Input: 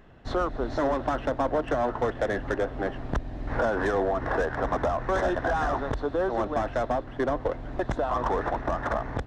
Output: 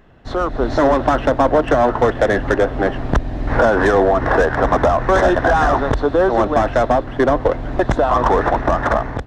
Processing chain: level rider gain up to 8.5 dB; trim +3.5 dB

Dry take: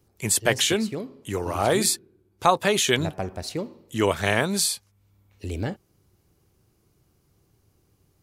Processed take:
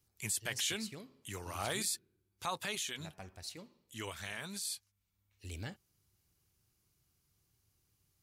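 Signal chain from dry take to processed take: amplifier tone stack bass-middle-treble 5-5-5; peak limiter -25.5 dBFS, peak gain reduction 10.5 dB; 2.75–5.45 s: flange 1.5 Hz, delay 2.3 ms, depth 2.9 ms, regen -58%; trim +1 dB

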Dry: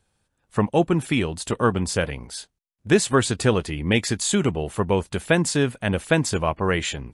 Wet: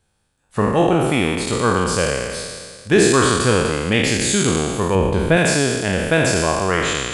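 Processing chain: spectral sustain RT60 1.84 s; 4.95–5.37 s: tilt EQ -2 dB/octave

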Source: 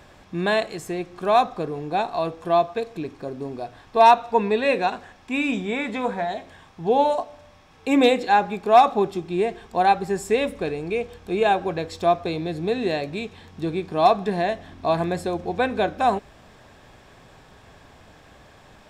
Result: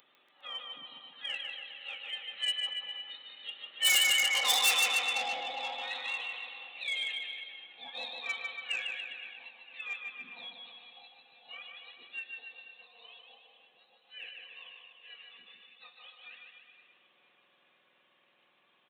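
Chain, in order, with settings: spectrum inverted on a logarithmic axis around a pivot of 1.4 kHz; Doppler pass-by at 4.64 s, 13 m/s, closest 4.4 m; de-hum 107 Hz, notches 36; upward compressor, threshold -59 dBFS; feedback delay 485 ms, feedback 53%, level -16.5 dB; resampled via 8 kHz; bouncing-ball echo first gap 150 ms, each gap 0.9×, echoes 5; saturation -29 dBFS, distortion -7 dB; tilt EQ +4.5 dB/octave

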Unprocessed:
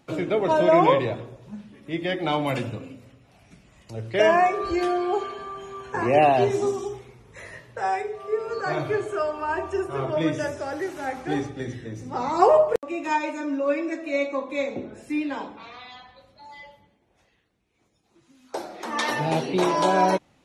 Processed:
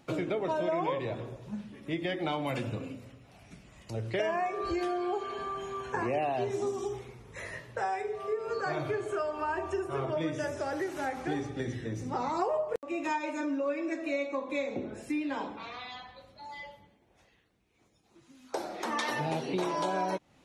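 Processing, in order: compression 4:1, threshold -30 dBFS, peak gain reduction 15.5 dB

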